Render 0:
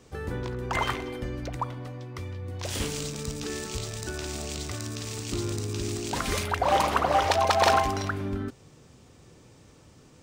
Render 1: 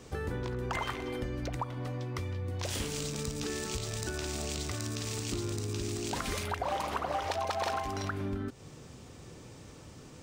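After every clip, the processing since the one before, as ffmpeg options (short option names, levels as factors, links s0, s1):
-af "acompressor=threshold=0.0141:ratio=4,volume=1.58"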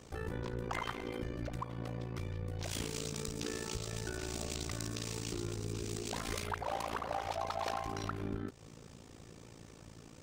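-filter_complex "[0:a]asplit=2[s0][s1];[s1]volume=28.2,asoftclip=hard,volume=0.0355,volume=0.631[s2];[s0][s2]amix=inputs=2:normalize=0,tremolo=f=56:d=0.889,volume=0.596"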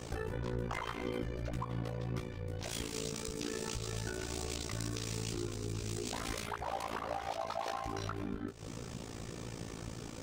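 -af "acompressor=threshold=0.00562:ratio=6,flanger=delay=16:depth=2.5:speed=1.8,volume=4.22"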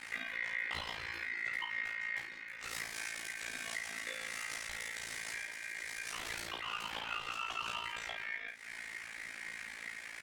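-filter_complex "[0:a]aeval=exprs='val(0)*sin(2*PI*2000*n/s)':c=same,asplit=2[s0][s1];[s1]aecho=0:1:15|50:0.668|0.531[s2];[s0][s2]amix=inputs=2:normalize=0,volume=0.841"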